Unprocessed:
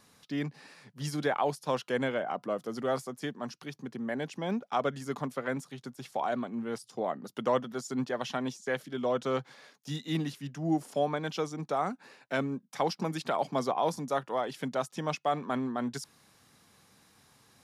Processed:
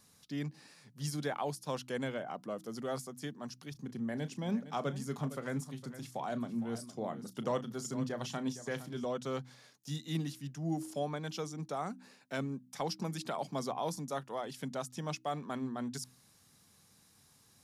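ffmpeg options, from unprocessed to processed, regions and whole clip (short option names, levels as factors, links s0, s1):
-filter_complex "[0:a]asettb=1/sr,asplit=3[s0][s1][s2];[s0]atrim=end=3.714[s3];[s1]atrim=start=3.71:end=9.05,asetpts=PTS-STARTPTS,afade=t=in:d=0.004:c=qsin,afade=t=out:st=5.336:d=0.004:c=qsin,equalizer=f=90:t=o:w=2.7:g=5.5,asplit=2[s4][s5];[s5]adelay=34,volume=0.211[s6];[s4][s6]amix=inputs=2:normalize=0,atrim=end_sample=235494,aecho=1:1:460:0.211,atrim=end_sample=235494[s7];[s2]atrim=start=9.046[s8];[s3][s7]acrossfade=d=0.004:c1=hsin:c2=qsin[s9];[s9][s8]acrossfade=d=0.004:c1=qsin:c2=hsin,bass=f=250:g=7,treble=f=4000:g=9,bandreject=f=63.09:t=h:w=4,bandreject=f=126.18:t=h:w=4,bandreject=f=189.27:t=h:w=4,bandreject=f=252.36:t=h:w=4,bandreject=f=315.45:t=h:w=4,volume=0.398"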